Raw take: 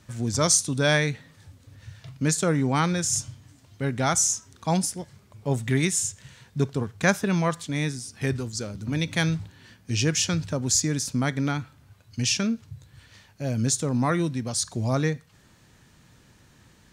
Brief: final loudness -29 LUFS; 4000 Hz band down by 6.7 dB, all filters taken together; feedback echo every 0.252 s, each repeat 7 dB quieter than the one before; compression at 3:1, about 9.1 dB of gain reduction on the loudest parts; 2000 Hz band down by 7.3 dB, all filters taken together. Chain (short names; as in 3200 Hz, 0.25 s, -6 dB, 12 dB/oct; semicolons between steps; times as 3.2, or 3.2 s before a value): bell 2000 Hz -8 dB; bell 4000 Hz -7.5 dB; compressor 3:1, threshold -31 dBFS; feedback echo 0.252 s, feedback 45%, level -7 dB; gain +4.5 dB